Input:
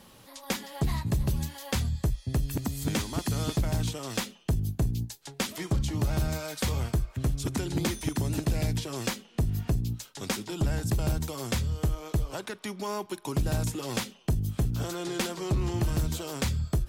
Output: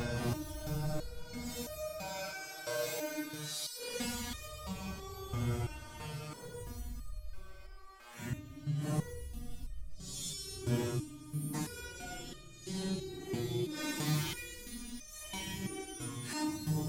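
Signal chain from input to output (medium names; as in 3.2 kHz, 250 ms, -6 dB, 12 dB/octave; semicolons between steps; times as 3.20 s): Paulstretch 8.1×, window 0.05 s, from 6.14 s; compression 2:1, threshold -38 dBFS, peak gain reduction 10.5 dB; spectral replace 11.23–11.51 s, 280–8900 Hz before; on a send: feedback echo behind a high-pass 288 ms, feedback 49%, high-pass 2 kHz, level -13 dB; on the sum: resonator arpeggio 3 Hz 120–610 Hz; trim +12.5 dB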